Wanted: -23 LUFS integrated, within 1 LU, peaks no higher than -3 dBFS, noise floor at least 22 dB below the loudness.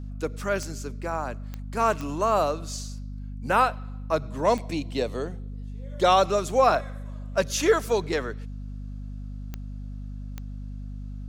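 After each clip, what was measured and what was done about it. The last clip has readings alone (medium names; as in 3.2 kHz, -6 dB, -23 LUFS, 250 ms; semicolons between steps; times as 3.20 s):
clicks found 6; hum 50 Hz; highest harmonic 250 Hz; hum level -33 dBFS; loudness -25.5 LUFS; peak level -7.5 dBFS; loudness target -23.0 LUFS
-> de-click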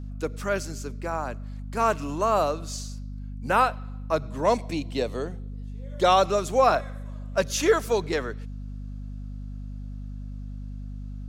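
clicks found 0; hum 50 Hz; highest harmonic 250 Hz; hum level -33 dBFS
-> de-hum 50 Hz, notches 5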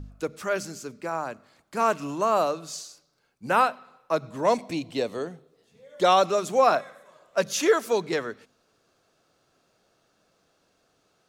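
hum not found; loudness -25.5 LUFS; peak level -8.0 dBFS; loudness target -23.0 LUFS
-> trim +2.5 dB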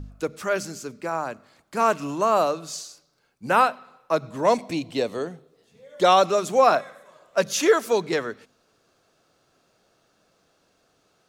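loudness -23.0 LUFS; peak level -5.5 dBFS; noise floor -66 dBFS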